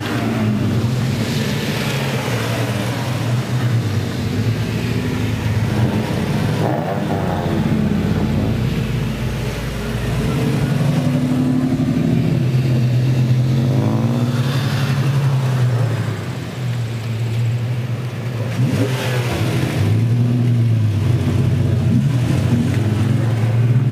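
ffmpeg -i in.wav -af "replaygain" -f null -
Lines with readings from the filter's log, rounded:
track_gain = +2.4 dB
track_peak = 0.402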